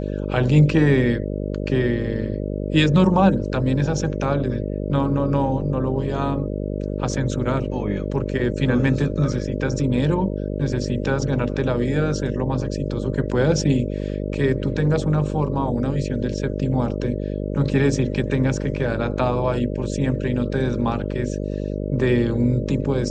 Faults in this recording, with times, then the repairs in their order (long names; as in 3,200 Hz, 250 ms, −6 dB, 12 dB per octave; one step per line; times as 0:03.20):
mains buzz 50 Hz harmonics 12 −26 dBFS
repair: hum removal 50 Hz, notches 12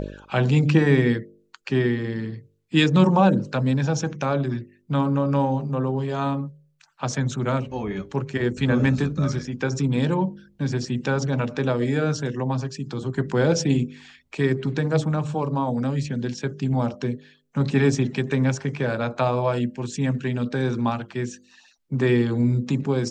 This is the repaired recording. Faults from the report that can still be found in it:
none of them is left